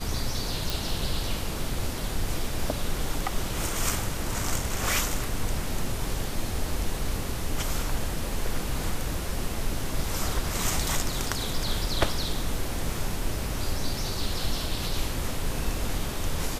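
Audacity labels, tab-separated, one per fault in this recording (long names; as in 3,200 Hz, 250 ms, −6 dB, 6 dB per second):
0.700000	0.700000	click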